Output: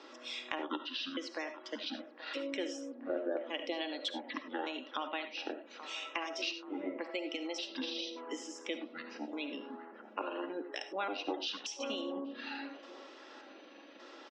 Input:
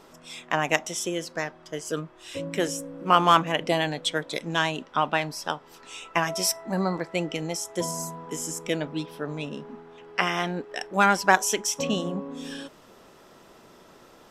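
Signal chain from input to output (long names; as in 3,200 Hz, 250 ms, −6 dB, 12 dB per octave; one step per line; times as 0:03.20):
pitch shifter gated in a rhythm −12 semitones, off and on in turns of 583 ms
Butterworth high-pass 270 Hz 48 dB per octave
gate on every frequency bin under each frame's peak −30 dB strong
parametric band 710 Hz −7 dB 2.3 octaves
comb filter 3.6 ms, depth 36%
dynamic equaliser 1,600 Hz, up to −7 dB, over −48 dBFS, Q 2.6
downward compressor 3 to 1, threshold −42 dBFS, peak gain reduction 16.5 dB
low-pass filter 5,100 Hz 24 dB per octave
delay with a band-pass on its return 831 ms, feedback 47%, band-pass 970 Hz, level −13 dB
convolution reverb, pre-delay 30 ms, DRR 8.5 dB
level +3.5 dB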